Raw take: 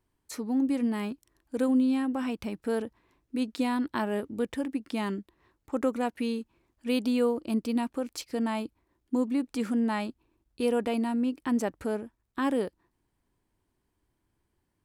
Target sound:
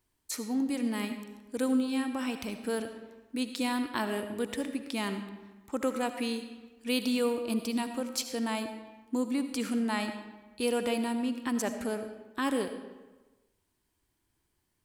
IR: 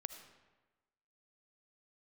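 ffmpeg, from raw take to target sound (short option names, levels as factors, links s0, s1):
-filter_complex "[0:a]highshelf=f=2100:g=10.5[s0];[1:a]atrim=start_sample=2205[s1];[s0][s1]afir=irnorm=-1:irlink=0"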